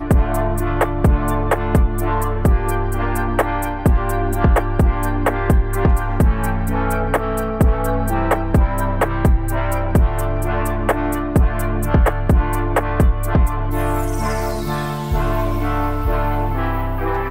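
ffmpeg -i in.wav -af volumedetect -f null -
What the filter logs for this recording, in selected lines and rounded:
mean_volume: -16.7 dB
max_volume: -5.2 dB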